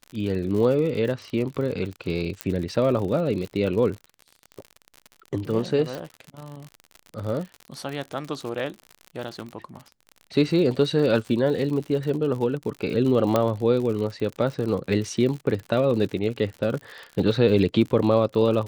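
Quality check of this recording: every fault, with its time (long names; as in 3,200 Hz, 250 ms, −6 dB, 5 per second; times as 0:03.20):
surface crackle 66 per second −31 dBFS
0:02.41: click −10 dBFS
0:05.95: click −19 dBFS
0:13.36: click −8 dBFS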